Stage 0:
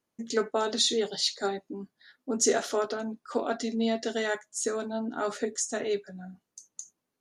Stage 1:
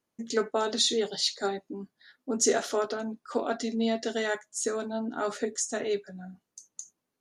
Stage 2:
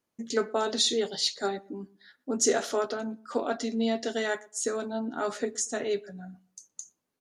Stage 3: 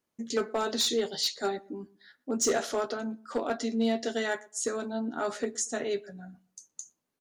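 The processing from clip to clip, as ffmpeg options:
-af anull
-filter_complex "[0:a]asplit=2[a][b];[b]adelay=118,lowpass=f=1.2k:p=1,volume=-21dB,asplit=2[c][d];[d]adelay=118,lowpass=f=1.2k:p=1,volume=0.23[e];[a][c][e]amix=inputs=3:normalize=0"
-filter_complex "[0:a]asoftclip=type=hard:threshold=-20.5dB,asplit=2[a][b];[b]adelay=13,volume=-13dB[c];[a][c]amix=inputs=2:normalize=0,volume=-1dB"

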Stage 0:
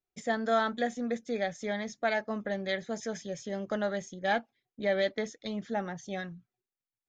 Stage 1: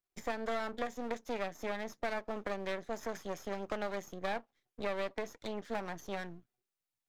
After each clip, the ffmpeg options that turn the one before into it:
-filter_complex "[0:a]aeval=exprs='max(val(0),0)':c=same,acrossover=split=310|1200|2600[a][b][c][d];[a]acompressor=threshold=-48dB:ratio=4[e];[b]acompressor=threshold=-39dB:ratio=4[f];[c]acompressor=threshold=-50dB:ratio=4[g];[d]acompressor=threshold=-56dB:ratio=4[h];[e][f][g][h]amix=inputs=4:normalize=0,volume=3.5dB"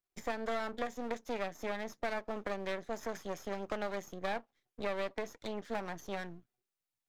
-af anull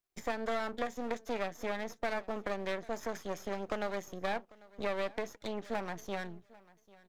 -af "aecho=1:1:795|1590:0.075|0.0112,volume=1.5dB"

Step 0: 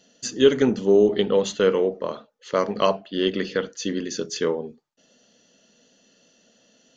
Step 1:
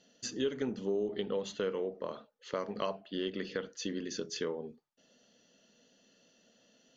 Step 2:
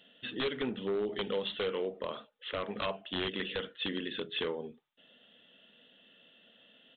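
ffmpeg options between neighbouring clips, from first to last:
-af "lowpass=6.4k,acompressor=threshold=-28dB:ratio=2.5,volume=-6.5dB"
-af "crystalizer=i=7.5:c=0,aresample=8000,aeval=exprs='0.0531*(abs(mod(val(0)/0.0531+3,4)-2)-1)':c=same,aresample=44100"

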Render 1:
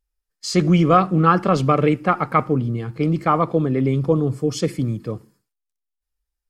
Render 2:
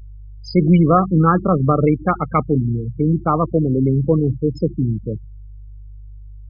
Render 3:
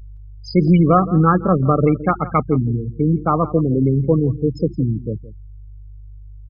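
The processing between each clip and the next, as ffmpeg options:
-af "lowshelf=f=450:g=5.5,aeval=exprs='val(0)+0.0251*(sin(2*PI*50*n/s)+sin(2*PI*2*50*n/s)/2+sin(2*PI*3*50*n/s)/3+sin(2*PI*4*50*n/s)/4+sin(2*PI*5*50*n/s)/5)':c=same,afftfilt=real='re*gte(hypot(re,im),0.158)':imag='im*gte(hypot(re,im),0.158)':win_size=1024:overlap=0.75,volume=-1.5dB"
-af "aecho=1:1:168:0.141"

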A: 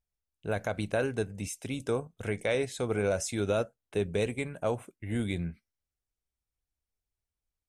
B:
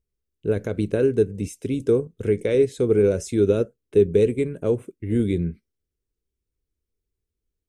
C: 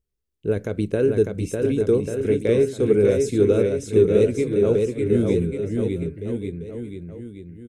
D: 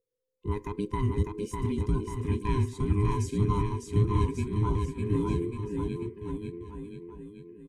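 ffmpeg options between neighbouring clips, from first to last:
-af "lowshelf=f=550:t=q:w=3:g=9,volume=-1dB"
-af "aecho=1:1:600|1140|1626|2063|2457:0.631|0.398|0.251|0.158|0.1"
-af "afftfilt=real='real(if(between(b,1,1008),(2*floor((b-1)/24)+1)*24-b,b),0)':imag='imag(if(between(b,1,1008),(2*floor((b-1)/24)+1)*24-b,b),0)*if(between(b,1,1008),-1,1)':win_size=2048:overlap=0.75,volume=-8dB"

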